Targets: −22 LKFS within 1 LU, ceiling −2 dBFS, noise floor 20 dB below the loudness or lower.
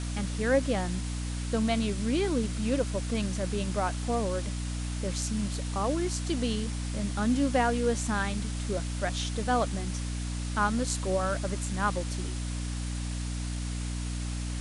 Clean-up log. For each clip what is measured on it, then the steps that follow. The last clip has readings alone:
mains hum 60 Hz; hum harmonics up to 300 Hz; level of the hum −31 dBFS; background noise floor −33 dBFS; target noise floor −51 dBFS; integrated loudness −30.5 LKFS; sample peak −13.0 dBFS; target loudness −22.0 LKFS
→ hum removal 60 Hz, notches 5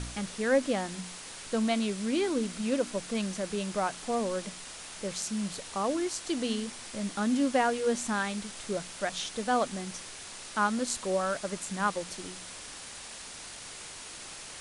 mains hum none found; background noise floor −45 dBFS; target noise floor −52 dBFS
→ broadband denoise 7 dB, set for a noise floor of −45 dBFS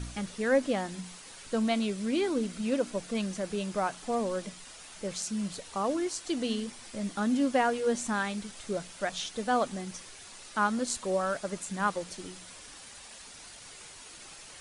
background noise floor −49 dBFS; target noise floor −52 dBFS
→ broadband denoise 6 dB, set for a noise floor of −49 dBFS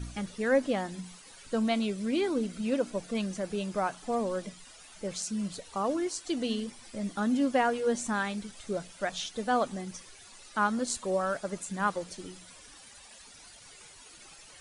background noise floor −52 dBFS; integrated loudness −31.5 LKFS; sample peak −14.5 dBFS; target loudness −22.0 LKFS
→ level +9.5 dB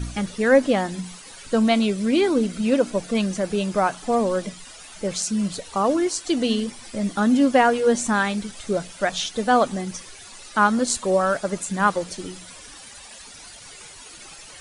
integrated loudness −22.0 LKFS; sample peak −5.0 dBFS; background noise floor −43 dBFS

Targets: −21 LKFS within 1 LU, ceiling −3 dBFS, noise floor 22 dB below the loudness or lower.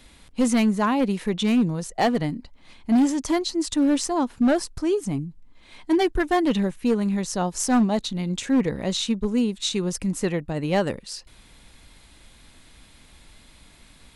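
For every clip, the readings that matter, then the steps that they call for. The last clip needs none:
share of clipped samples 1.4%; peaks flattened at −14.5 dBFS; integrated loudness −23.5 LKFS; sample peak −14.5 dBFS; target loudness −21.0 LKFS
→ clipped peaks rebuilt −14.5 dBFS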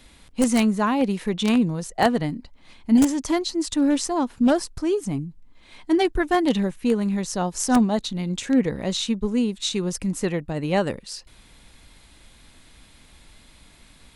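share of clipped samples 0.0%; integrated loudness −23.0 LKFS; sample peak −5.5 dBFS; target loudness −21.0 LKFS
→ level +2 dB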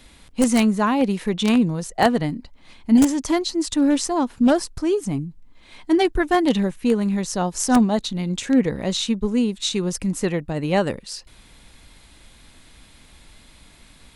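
integrated loudness −21.0 LKFS; sample peak −3.5 dBFS; background noise floor −50 dBFS

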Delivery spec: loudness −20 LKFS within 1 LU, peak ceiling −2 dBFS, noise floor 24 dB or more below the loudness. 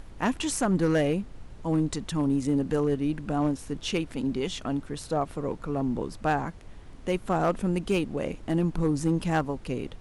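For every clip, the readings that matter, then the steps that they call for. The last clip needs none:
share of clipped samples 0.5%; peaks flattened at −17.0 dBFS; background noise floor −46 dBFS; target noise floor −53 dBFS; integrated loudness −28.5 LKFS; sample peak −17.0 dBFS; target loudness −20.0 LKFS
→ clipped peaks rebuilt −17 dBFS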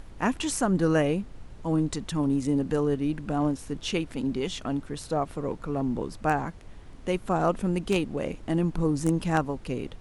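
share of clipped samples 0.0%; background noise floor −46 dBFS; target noise floor −52 dBFS
→ noise reduction from a noise print 6 dB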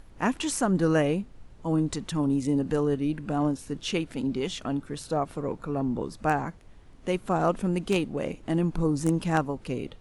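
background noise floor −51 dBFS; target noise floor −52 dBFS
→ noise reduction from a noise print 6 dB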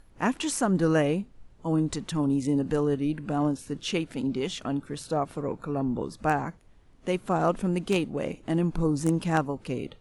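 background noise floor −56 dBFS; integrated loudness −28.0 LKFS; sample peak −9.0 dBFS; target loudness −20.0 LKFS
→ level +8 dB
brickwall limiter −2 dBFS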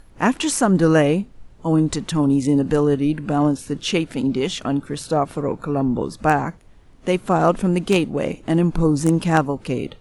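integrated loudness −20.0 LKFS; sample peak −2.0 dBFS; background noise floor −48 dBFS

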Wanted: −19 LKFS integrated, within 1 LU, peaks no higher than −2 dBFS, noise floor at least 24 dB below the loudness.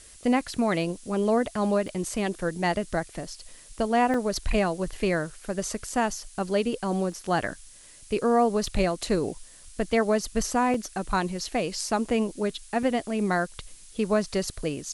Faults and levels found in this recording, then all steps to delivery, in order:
number of dropouts 6; longest dropout 2.4 ms; background noise floor −50 dBFS; target noise floor −51 dBFS; integrated loudness −27.0 LKFS; sample peak −11.0 dBFS; target loudness −19.0 LKFS
→ repair the gap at 0:01.88/0:04.14/0:07.12/0:08.67/0:10.74/0:12.83, 2.4 ms
noise reduction from a noise print 6 dB
level +8 dB

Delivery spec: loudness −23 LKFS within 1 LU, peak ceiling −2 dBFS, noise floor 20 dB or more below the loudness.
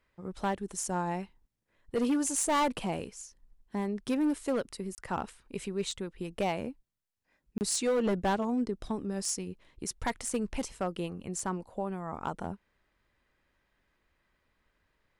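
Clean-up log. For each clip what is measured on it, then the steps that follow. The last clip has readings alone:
share of clipped samples 1.4%; peaks flattened at −23.5 dBFS; number of dropouts 2; longest dropout 29 ms; integrated loudness −33.0 LKFS; sample peak −23.5 dBFS; target loudness −23.0 LKFS
→ clipped peaks rebuilt −23.5 dBFS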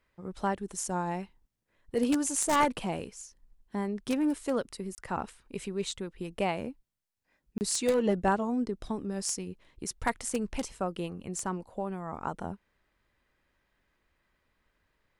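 share of clipped samples 0.0%; number of dropouts 2; longest dropout 29 ms
→ repair the gap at 0:04.95/0:07.58, 29 ms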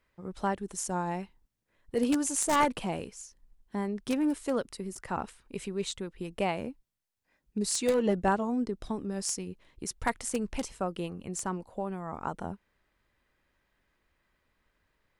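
number of dropouts 0; integrated loudness −32.0 LKFS; sample peak −14.5 dBFS; target loudness −23.0 LKFS
→ level +9 dB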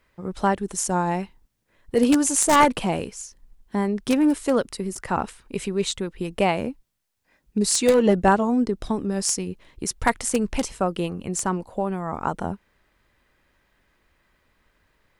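integrated loudness −23.5 LKFS; sample peak −5.5 dBFS; background noise floor −69 dBFS

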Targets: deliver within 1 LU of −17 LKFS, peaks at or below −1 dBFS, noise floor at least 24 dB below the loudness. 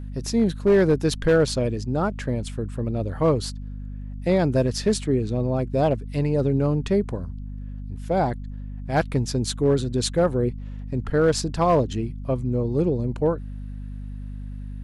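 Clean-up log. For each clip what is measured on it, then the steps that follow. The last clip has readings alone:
share of clipped samples 0.6%; peaks flattened at −12.0 dBFS; mains hum 50 Hz; hum harmonics up to 250 Hz; level of the hum −31 dBFS; integrated loudness −23.5 LKFS; sample peak −12.0 dBFS; target loudness −17.0 LKFS
→ clipped peaks rebuilt −12 dBFS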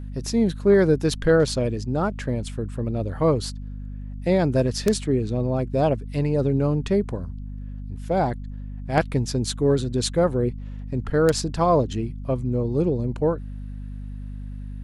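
share of clipped samples 0.0%; mains hum 50 Hz; hum harmonics up to 250 Hz; level of the hum −31 dBFS
→ mains-hum notches 50/100/150/200/250 Hz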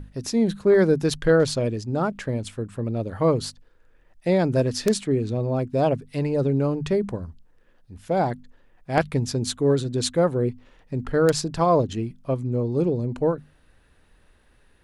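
mains hum none found; integrated loudness −23.5 LKFS; sample peak −3.5 dBFS; target loudness −17.0 LKFS
→ level +6.5 dB
brickwall limiter −1 dBFS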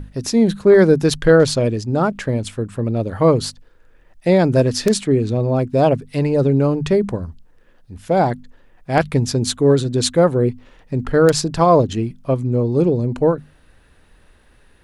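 integrated loudness −17.0 LKFS; sample peak −1.0 dBFS; background noise floor −52 dBFS

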